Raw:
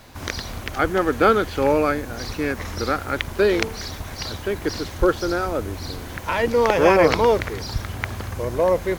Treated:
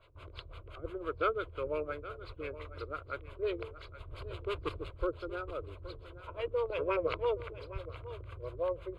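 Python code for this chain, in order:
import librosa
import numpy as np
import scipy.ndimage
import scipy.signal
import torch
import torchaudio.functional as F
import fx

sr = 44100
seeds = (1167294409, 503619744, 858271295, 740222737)

y = fx.halfwave_hold(x, sr, at=(4.07, 4.91))
y = scipy.signal.sosfilt(scipy.signal.butter(2, 11000.0, 'lowpass', fs=sr, output='sos'), y)
y = fx.peak_eq(y, sr, hz=190.0, db=-14.5, octaves=0.34)
y = fx.filter_lfo_lowpass(y, sr, shape='sine', hz=5.8, low_hz=230.0, high_hz=2800.0, q=0.97)
y = librosa.effects.preemphasis(y, coef=0.8, zi=[0.0])
y = fx.fixed_phaser(y, sr, hz=1200.0, stages=8)
y = y + 10.0 ** (-14.5 / 20.0) * np.pad(y, (int(821 * sr / 1000.0), 0))[:len(y)]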